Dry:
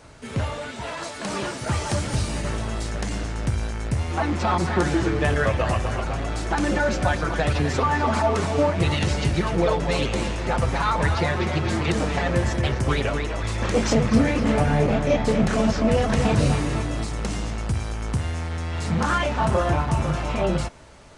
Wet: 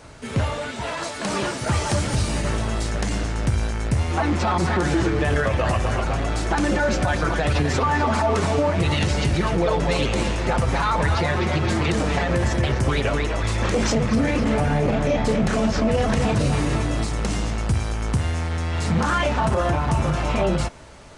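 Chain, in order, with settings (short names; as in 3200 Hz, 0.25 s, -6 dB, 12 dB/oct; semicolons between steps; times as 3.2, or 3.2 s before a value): limiter -15.5 dBFS, peak gain reduction 8 dB; gain +3.5 dB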